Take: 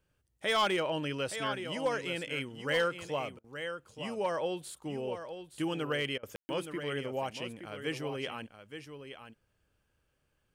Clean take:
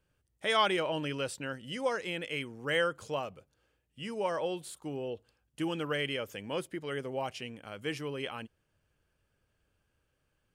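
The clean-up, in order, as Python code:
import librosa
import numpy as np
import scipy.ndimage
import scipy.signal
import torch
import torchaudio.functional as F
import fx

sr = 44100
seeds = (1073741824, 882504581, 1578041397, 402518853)

y = fx.fix_declip(x, sr, threshold_db=-22.5)
y = fx.fix_ambience(y, sr, seeds[0], print_start_s=10.03, print_end_s=10.53, start_s=6.36, end_s=6.49)
y = fx.fix_interpolate(y, sr, at_s=(3.39, 6.18), length_ms=50.0)
y = fx.fix_echo_inverse(y, sr, delay_ms=871, level_db=-9.5)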